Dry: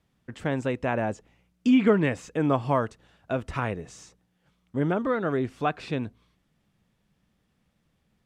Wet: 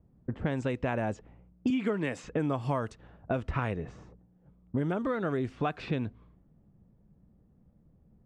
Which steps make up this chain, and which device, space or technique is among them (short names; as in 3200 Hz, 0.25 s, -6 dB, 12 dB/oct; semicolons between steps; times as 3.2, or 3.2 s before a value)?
1.7–2.24 Bessel high-pass 200 Hz; low-pass opened by the level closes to 550 Hz, open at -21.5 dBFS; ASMR close-microphone chain (low shelf 160 Hz +5 dB; compressor 5:1, threshold -35 dBFS, peak gain reduction 17.5 dB; high shelf 6100 Hz +7.5 dB); gain +6.5 dB